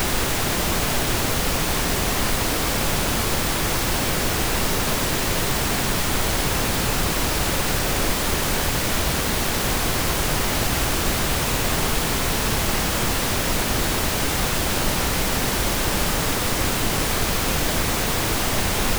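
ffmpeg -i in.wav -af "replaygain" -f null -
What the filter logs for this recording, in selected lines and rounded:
track_gain = +7.4 dB
track_peak = 0.299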